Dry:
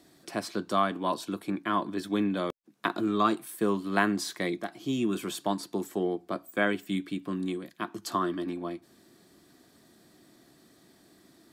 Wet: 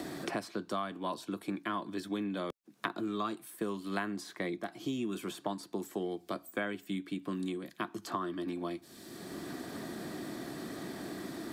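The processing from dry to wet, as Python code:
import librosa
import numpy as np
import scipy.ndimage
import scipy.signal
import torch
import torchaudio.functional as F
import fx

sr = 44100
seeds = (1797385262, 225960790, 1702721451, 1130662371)

y = fx.band_squash(x, sr, depth_pct=100)
y = y * librosa.db_to_amplitude(-7.0)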